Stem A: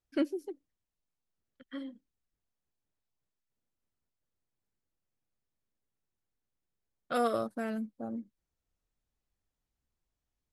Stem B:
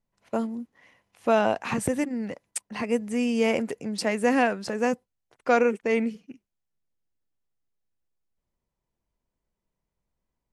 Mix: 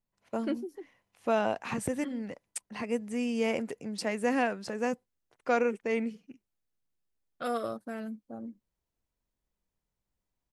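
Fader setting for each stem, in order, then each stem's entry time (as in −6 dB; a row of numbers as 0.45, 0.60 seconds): −3.0, −6.0 decibels; 0.30, 0.00 seconds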